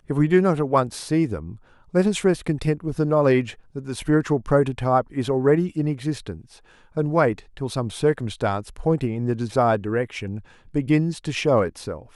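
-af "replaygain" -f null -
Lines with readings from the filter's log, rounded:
track_gain = +1.8 dB
track_peak = 0.380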